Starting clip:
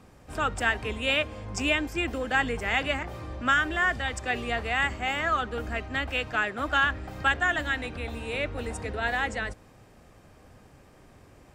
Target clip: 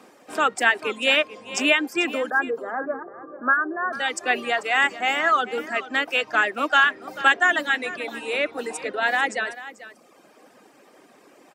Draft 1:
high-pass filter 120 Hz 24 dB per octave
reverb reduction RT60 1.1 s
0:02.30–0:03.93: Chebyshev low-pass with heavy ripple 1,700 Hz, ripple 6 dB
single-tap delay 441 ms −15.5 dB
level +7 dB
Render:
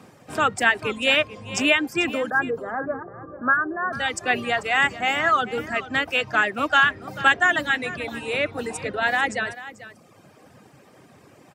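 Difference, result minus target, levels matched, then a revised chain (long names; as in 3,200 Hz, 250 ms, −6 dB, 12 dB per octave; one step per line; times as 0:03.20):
125 Hz band +16.0 dB
high-pass filter 250 Hz 24 dB per octave
reverb reduction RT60 1.1 s
0:02.30–0:03.93: Chebyshev low-pass with heavy ripple 1,700 Hz, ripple 6 dB
single-tap delay 441 ms −15.5 dB
level +7 dB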